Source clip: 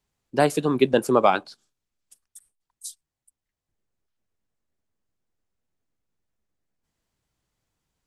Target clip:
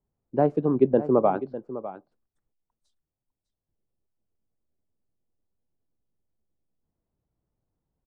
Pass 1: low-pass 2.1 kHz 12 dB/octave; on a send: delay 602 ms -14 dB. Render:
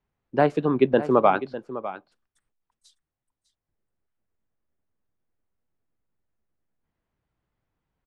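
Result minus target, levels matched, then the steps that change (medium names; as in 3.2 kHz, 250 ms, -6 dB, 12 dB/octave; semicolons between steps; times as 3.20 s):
2 kHz band +13.0 dB
change: low-pass 690 Hz 12 dB/octave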